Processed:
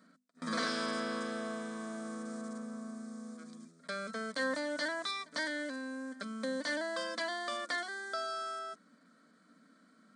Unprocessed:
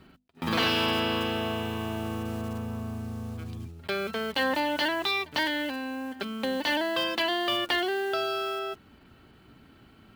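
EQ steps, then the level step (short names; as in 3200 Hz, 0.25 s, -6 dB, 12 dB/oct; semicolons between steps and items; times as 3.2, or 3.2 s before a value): brick-wall FIR band-pass 160–9500 Hz; high shelf 3700 Hz +9.5 dB; fixed phaser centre 560 Hz, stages 8; -6.0 dB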